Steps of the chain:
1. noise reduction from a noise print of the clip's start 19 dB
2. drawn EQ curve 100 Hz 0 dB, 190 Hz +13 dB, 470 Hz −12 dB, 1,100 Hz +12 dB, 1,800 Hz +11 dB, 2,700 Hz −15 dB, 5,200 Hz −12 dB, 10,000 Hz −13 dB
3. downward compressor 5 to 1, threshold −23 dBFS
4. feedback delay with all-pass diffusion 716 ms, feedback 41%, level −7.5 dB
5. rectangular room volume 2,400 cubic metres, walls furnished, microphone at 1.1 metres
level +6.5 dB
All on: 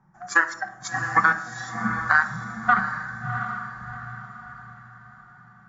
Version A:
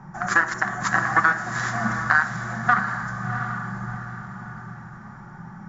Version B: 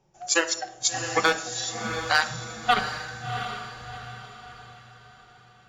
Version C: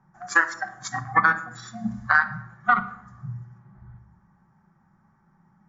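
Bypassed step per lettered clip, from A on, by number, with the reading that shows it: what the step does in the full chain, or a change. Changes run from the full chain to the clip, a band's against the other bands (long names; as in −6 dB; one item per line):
1, 125 Hz band +3.0 dB
2, 4 kHz band +18.5 dB
4, echo-to-direct ratio −4.0 dB to −8.0 dB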